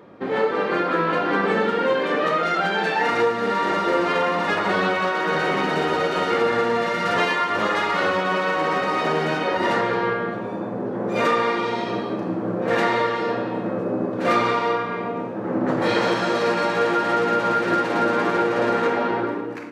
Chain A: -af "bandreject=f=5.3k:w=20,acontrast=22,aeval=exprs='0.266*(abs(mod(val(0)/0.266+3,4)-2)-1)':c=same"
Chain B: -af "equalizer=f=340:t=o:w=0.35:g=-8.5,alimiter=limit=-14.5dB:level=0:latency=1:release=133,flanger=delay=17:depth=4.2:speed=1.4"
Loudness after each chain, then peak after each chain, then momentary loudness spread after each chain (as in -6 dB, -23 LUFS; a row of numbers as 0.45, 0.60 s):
-18.0, -27.0 LUFS; -11.5, -14.5 dBFS; 5, 5 LU